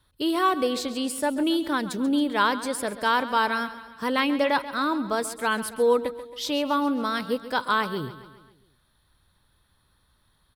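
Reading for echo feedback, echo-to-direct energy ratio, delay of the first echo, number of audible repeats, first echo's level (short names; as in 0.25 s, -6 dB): 54%, -13.0 dB, 0.136 s, 4, -14.5 dB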